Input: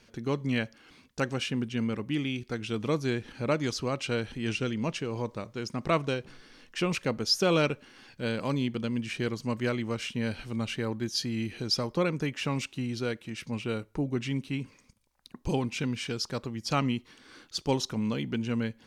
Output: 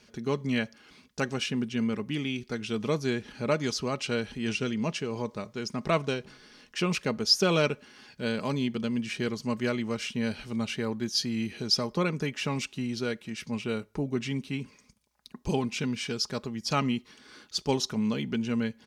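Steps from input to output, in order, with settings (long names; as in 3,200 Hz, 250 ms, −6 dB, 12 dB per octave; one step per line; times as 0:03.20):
high-pass filter 41 Hz
parametric band 5,300 Hz +3 dB
comb filter 4.8 ms, depth 35%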